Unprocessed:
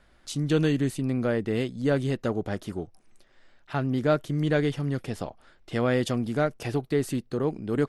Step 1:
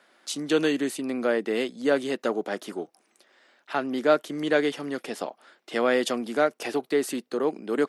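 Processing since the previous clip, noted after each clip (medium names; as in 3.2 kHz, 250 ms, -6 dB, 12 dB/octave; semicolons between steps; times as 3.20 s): Bessel high-pass 360 Hz, order 6; trim +4.5 dB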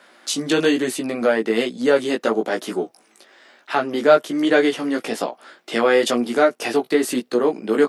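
in parallel at -2 dB: compression, threshold -33 dBFS, peak gain reduction 17.5 dB; on the sum: chorus 1.1 Hz, delay 16 ms, depth 2.3 ms; trim +8 dB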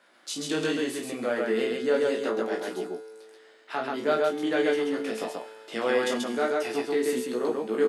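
feedback comb 110 Hz, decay 2 s, mix 70%; loudspeakers at several distances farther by 11 m -6 dB, 46 m -2 dB; trim -1.5 dB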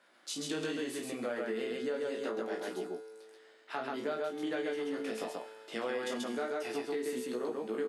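compression, threshold -27 dBFS, peak gain reduction 8.5 dB; trim -5 dB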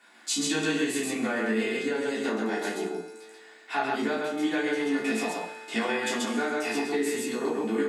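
reverberation RT60 0.45 s, pre-delay 3 ms, DRR -5.5 dB; trim +7 dB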